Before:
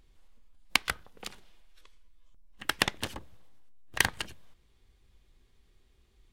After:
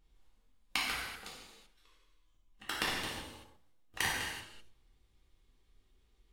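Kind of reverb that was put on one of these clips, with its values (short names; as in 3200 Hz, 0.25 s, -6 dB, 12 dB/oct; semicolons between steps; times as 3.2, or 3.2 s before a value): non-linear reverb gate 0.41 s falling, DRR -6.5 dB; gain -12 dB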